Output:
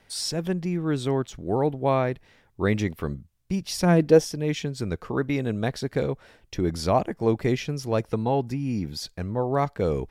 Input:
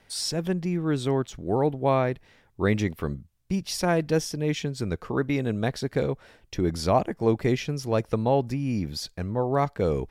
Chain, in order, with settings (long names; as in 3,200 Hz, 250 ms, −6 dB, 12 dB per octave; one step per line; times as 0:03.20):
0:03.76–0:04.24: parametric band 87 Hz → 700 Hz +9.5 dB 1.4 octaves
0:08.11–0:09.01: notch comb filter 590 Hz